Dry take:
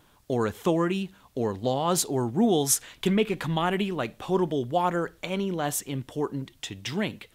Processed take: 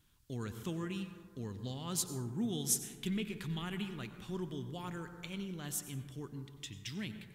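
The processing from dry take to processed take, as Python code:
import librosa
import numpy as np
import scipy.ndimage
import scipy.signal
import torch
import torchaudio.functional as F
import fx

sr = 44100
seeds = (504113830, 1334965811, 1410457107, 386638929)

y = fx.tone_stack(x, sr, knobs='6-0-2')
y = fx.rev_plate(y, sr, seeds[0], rt60_s=1.8, hf_ratio=0.25, predelay_ms=80, drr_db=9.0)
y = F.gain(torch.from_numpy(y), 6.0).numpy()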